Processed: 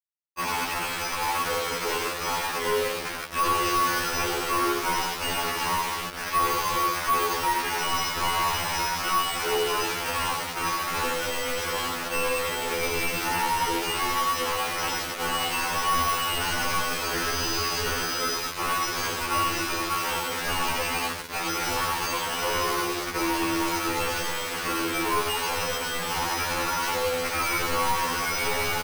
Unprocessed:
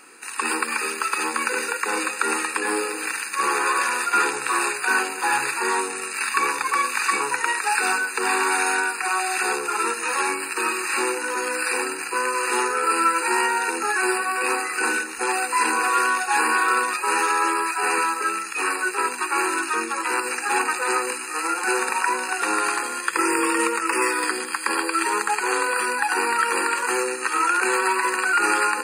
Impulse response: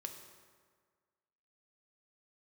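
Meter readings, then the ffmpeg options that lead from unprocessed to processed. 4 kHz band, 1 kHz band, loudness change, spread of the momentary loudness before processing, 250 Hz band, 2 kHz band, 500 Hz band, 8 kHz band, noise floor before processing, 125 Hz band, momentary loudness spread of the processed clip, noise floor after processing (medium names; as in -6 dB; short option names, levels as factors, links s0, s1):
+3.5 dB, -4.0 dB, -4.0 dB, 5 LU, -3.0 dB, -7.0 dB, -2.5 dB, -5.0 dB, -32 dBFS, no reading, 4 LU, -32 dBFS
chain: -filter_complex "[0:a]asplit=2[s0][s1];[s1]alimiter=limit=0.237:level=0:latency=1:release=144,volume=0.794[s2];[s0][s2]amix=inputs=2:normalize=0,flanger=delay=5.4:depth=2.7:regen=-22:speed=0.13:shape=sinusoidal,bandreject=f=50:t=h:w=6,bandreject=f=100:t=h:w=6,bandreject=f=150:t=h:w=6,bandreject=f=200:t=h:w=6,bandreject=f=250:t=h:w=6,bandreject=f=300:t=h:w=6,aresample=8000,aeval=exprs='0.168*(abs(mod(val(0)/0.168+3,4)-2)-1)':c=same,aresample=44100[s3];[1:a]atrim=start_sample=2205,asetrate=57330,aresample=44100[s4];[s3][s4]afir=irnorm=-1:irlink=0,asubboost=boost=4:cutoff=100,lowpass=1100,acrusher=samples=12:mix=1:aa=0.000001,aecho=1:1:91|182|273:0.355|0.0923|0.024,asoftclip=type=hard:threshold=0.02,acrusher=bits=5:mix=0:aa=0.000001,afftfilt=real='re*2*eq(mod(b,4),0)':imag='im*2*eq(mod(b,4),0)':win_size=2048:overlap=0.75,volume=2.82"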